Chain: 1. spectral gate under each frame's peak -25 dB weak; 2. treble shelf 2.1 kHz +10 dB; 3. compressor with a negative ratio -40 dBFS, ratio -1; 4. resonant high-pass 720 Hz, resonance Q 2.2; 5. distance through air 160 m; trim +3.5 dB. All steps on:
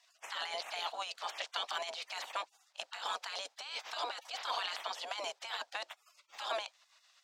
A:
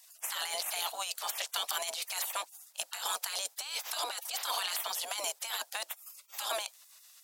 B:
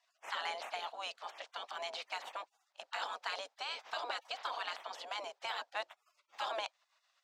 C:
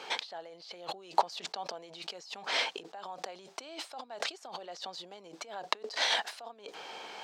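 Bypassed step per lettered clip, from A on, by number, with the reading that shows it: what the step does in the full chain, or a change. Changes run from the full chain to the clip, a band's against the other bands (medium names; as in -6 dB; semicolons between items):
5, 8 kHz band +14.5 dB; 2, 8 kHz band -6.0 dB; 1, 250 Hz band +9.0 dB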